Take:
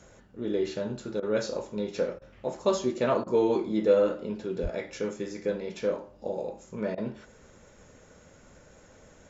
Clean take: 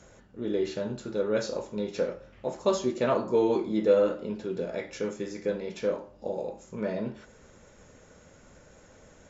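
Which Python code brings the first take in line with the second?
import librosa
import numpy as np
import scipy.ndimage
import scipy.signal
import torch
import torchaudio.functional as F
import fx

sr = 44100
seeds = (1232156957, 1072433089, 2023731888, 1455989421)

y = fx.fix_deplosive(x, sr, at_s=(4.62,))
y = fx.fix_interpolate(y, sr, at_s=(1.2, 2.19, 3.24, 6.95), length_ms=25.0)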